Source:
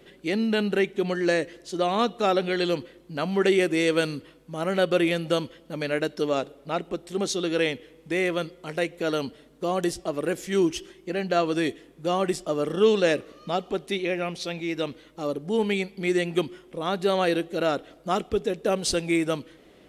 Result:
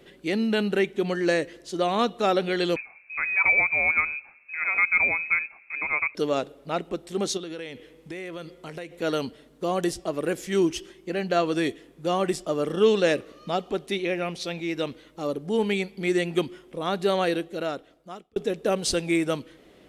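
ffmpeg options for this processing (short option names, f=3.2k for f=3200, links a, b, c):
-filter_complex "[0:a]asettb=1/sr,asplit=3[a][b][c];[a]atrim=end=2.764[d];[b]atrim=start=2.76:end=6.15,asetpts=PTS-STARTPTS,afade=t=in:d=0.004:c=qsin,afade=t=out:st=3.386:d=0.004:c=qsin,lowpass=f=2.3k:t=q:w=0.5098,lowpass=f=2.3k:t=q:w=0.6013,lowpass=f=2.3k:t=q:w=0.9,lowpass=f=2.3k:t=q:w=2.563,afreqshift=-2700[e];[c]atrim=start=6.146[f];[d][e]acrossfade=d=0.004:c1=hsin:c2=qsin[g];[g][f]acrossfade=d=0.004:c1=qsin:c2=hsin,asettb=1/sr,asplit=3[h][i][j];[h]atrim=end=7.374[k];[i]atrim=start=7.37:end=9.02,asetpts=PTS-STARTPTS,afade=t=in:d=0.004:c=qsin,afade=t=out:st=1.646:d=0.004:c=qsin,acompressor=threshold=-33dB:ratio=6:attack=3.2:release=140:knee=1:detection=peak[l];[j]atrim=start=9.016[m];[k][l]acrossfade=d=0.004:c1=hsin:c2=qsin[n];[n][m]acrossfade=d=0.004:c1=qsin:c2=hsin,asplit=2[o][p];[o]atrim=end=18.36,asetpts=PTS-STARTPTS,afade=t=out:st=17.11:d=1.25[q];[p]atrim=start=18.36,asetpts=PTS-STARTPTS,afade=t=in:d=0.004:c=hsin[r];[q][r]concat=n=2:v=0:a=1"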